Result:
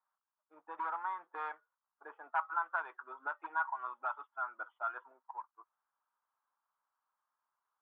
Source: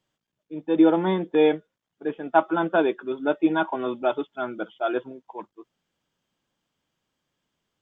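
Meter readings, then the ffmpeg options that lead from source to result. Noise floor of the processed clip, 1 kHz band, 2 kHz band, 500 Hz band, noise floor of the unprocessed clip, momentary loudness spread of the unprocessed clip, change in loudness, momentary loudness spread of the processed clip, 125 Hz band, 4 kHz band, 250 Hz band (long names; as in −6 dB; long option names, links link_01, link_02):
below −85 dBFS, −9.0 dB, −8.0 dB, −29.0 dB, −84 dBFS, 17 LU, −15.5 dB, 16 LU, below −40 dB, can't be measured, below −40 dB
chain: -filter_complex "[0:a]aeval=exprs='if(lt(val(0),0),0.708*val(0),val(0))':channel_layout=same,aeval=exprs='0.188*(cos(1*acos(clip(val(0)/0.188,-1,1)))-cos(1*PI/2))+0.0133*(cos(4*acos(clip(val(0)/0.188,-1,1)))-cos(4*PI/2))':channel_layout=same,asuperpass=centerf=1100:order=4:qfactor=2.1,acrossover=split=1100[link_01][link_02];[link_01]acompressor=threshold=-51dB:ratio=5[link_03];[link_03][link_02]amix=inputs=2:normalize=0,volume=2.5dB"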